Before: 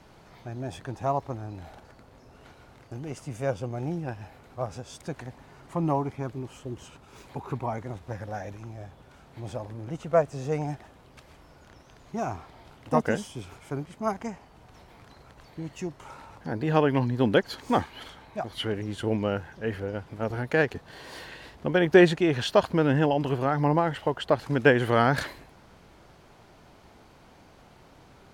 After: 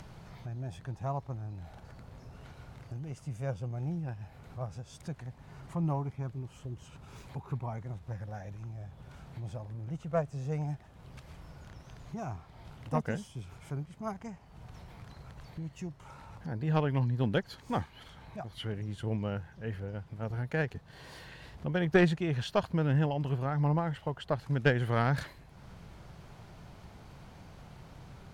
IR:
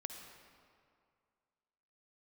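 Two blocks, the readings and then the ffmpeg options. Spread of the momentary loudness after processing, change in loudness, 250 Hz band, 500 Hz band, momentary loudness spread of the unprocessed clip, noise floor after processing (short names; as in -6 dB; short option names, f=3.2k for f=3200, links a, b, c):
22 LU, -7.0 dB, -7.0 dB, -10.0 dB, 19 LU, -55 dBFS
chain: -af "acompressor=mode=upward:threshold=-34dB:ratio=2.5,aeval=exprs='0.596*(cos(1*acos(clip(val(0)/0.596,-1,1)))-cos(1*PI/2))+0.0841*(cos(3*acos(clip(val(0)/0.596,-1,1)))-cos(3*PI/2))':c=same,lowshelf=f=210:t=q:w=1.5:g=7,volume=-5dB"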